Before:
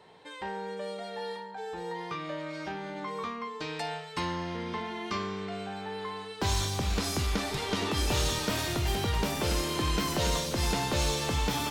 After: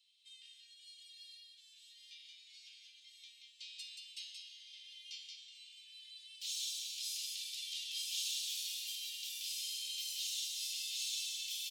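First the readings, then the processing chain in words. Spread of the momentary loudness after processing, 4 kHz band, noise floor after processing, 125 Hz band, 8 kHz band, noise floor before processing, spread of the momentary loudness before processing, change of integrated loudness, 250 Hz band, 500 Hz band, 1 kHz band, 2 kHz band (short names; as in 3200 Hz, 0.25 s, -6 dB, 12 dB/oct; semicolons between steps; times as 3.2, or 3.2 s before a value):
19 LU, -4.5 dB, -62 dBFS, under -40 dB, -4.5 dB, -44 dBFS, 9 LU, -8.0 dB, under -40 dB, under -40 dB, under -40 dB, -17.0 dB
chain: steep high-pass 2800 Hz 48 dB/oct; on a send: echo 0.178 s -4 dB; on the sum: gain -6 dB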